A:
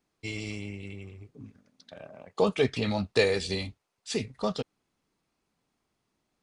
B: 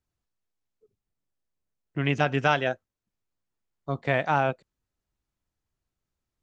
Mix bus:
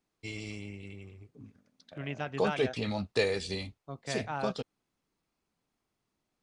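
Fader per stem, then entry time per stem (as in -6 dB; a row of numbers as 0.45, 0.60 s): -4.5, -12.5 dB; 0.00, 0.00 s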